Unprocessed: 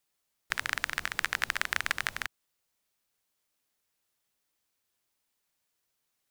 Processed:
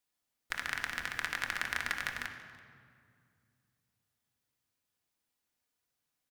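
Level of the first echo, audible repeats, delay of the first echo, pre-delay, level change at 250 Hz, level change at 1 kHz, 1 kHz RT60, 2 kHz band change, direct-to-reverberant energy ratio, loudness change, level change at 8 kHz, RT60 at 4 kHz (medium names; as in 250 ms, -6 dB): -23.0 dB, 1, 332 ms, 3 ms, 0.0 dB, -4.0 dB, 2.1 s, -3.5 dB, 2.0 dB, -4.0 dB, -5.5 dB, 1.4 s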